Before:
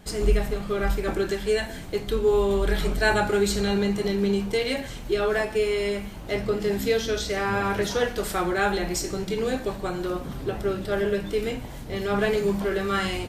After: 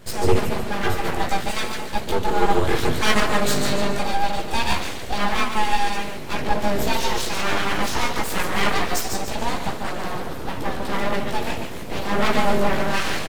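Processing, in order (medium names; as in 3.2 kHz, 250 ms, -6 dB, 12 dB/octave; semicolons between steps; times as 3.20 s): feedback delay 144 ms, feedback 41%, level -6 dB; chorus voices 2, 0.2 Hz, delay 16 ms, depth 3.6 ms; full-wave rectifier; trim +8 dB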